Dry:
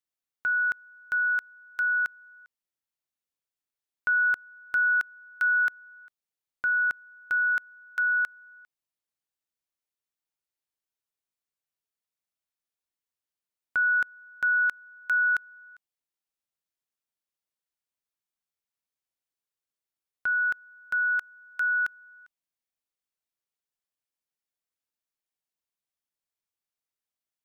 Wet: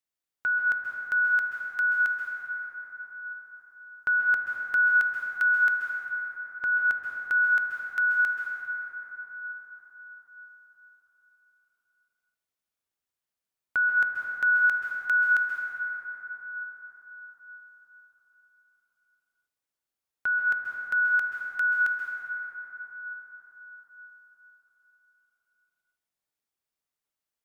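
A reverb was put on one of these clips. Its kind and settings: plate-style reverb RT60 5 s, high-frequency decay 0.3×, pre-delay 0.12 s, DRR 0 dB

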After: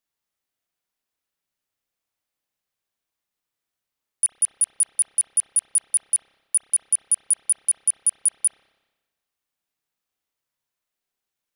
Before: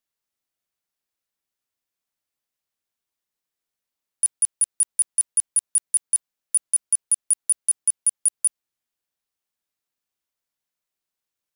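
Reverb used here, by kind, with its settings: spring tank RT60 1.2 s, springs 30/59 ms, chirp 45 ms, DRR 1.5 dB

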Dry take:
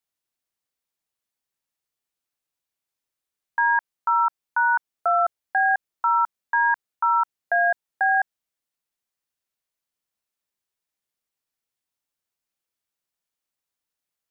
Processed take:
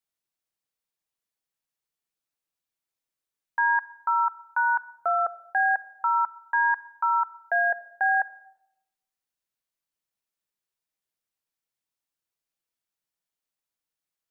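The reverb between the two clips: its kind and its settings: shoebox room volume 3400 m³, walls furnished, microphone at 0.64 m; gain -3.5 dB

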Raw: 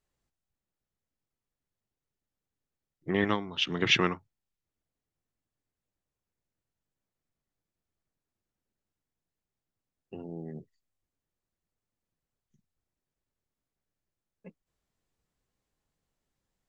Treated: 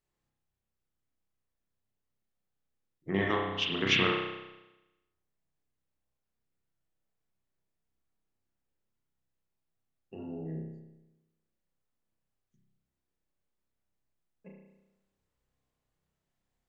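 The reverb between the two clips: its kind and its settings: spring tank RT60 1 s, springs 31 ms, chirp 20 ms, DRR -1.5 dB; gain -4 dB

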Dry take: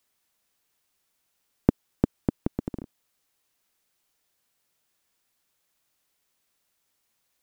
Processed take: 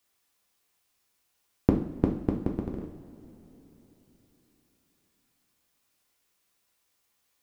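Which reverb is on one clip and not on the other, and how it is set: two-slope reverb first 0.51 s, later 3.9 s, from -18 dB, DRR 0 dB; gain -2 dB

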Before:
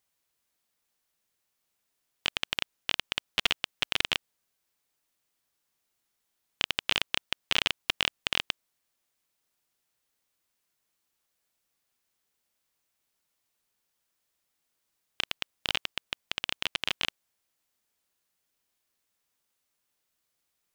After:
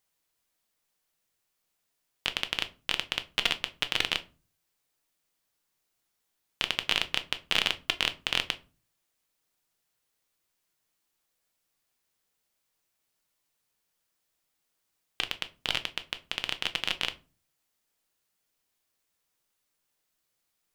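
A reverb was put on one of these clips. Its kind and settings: shoebox room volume 160 m³, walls furnished, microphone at 0.57 m

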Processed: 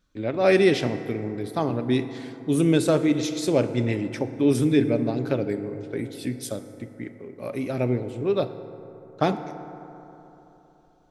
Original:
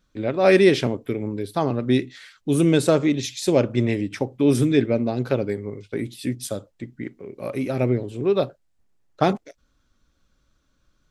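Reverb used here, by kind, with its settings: FDN reverb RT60 3.5 s, high-frequency decay 0.35×, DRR 9.5 dB; gain -3 dB

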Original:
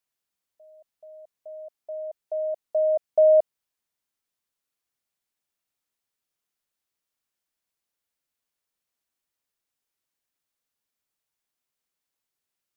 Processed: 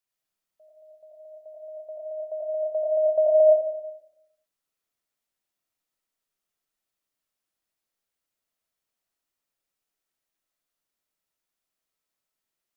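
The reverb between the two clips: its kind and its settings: digital reverb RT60 0.87 s, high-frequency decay 0.3×, pre-delay 50 ms, DRR -2 dB; gain -3.5 dB

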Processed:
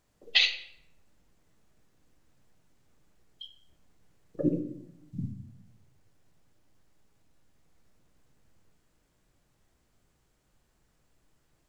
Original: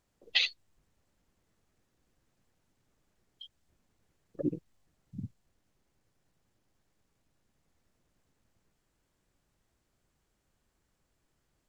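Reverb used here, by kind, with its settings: shoebox room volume 180 m³, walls mixed, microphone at 0.5 m; gain +4 dB

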